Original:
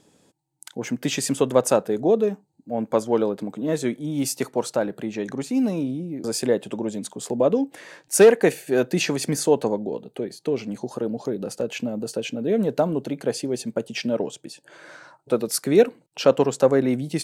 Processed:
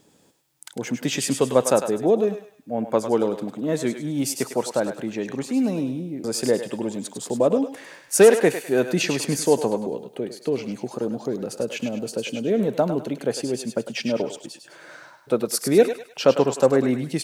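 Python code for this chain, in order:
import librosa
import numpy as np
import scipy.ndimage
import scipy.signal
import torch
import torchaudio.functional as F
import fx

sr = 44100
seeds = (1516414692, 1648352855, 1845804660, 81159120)

y = fx.echo_thinned(x, sr, ms=102, feedback_pct=42, hz=710.0, wet_db=-7.0)
y = fx.quant_dither(y, sr, seeds[0], bits=12, dither='triangular')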